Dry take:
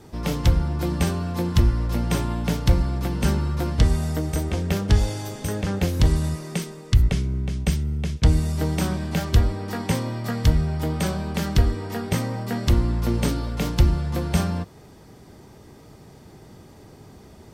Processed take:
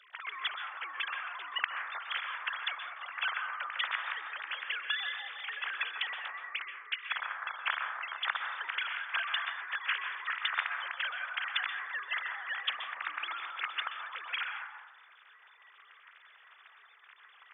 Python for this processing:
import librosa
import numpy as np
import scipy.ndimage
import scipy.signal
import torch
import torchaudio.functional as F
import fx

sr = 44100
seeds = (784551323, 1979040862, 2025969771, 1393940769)

y = fx.sine_speech(x, sr)
y = scipy.signal.sosfilt(scipy.signal.butter(4, 1400.0, 'highpass', fs=sr, output='sos'), y)
y = fx.rev_plate(y, sr, seeds[0], rt60_s=1.0, hf_ratio=0.25, predelay_ms=115, drr_db=4.0)
y = y * librosa.db_to_amplitude(-4.0)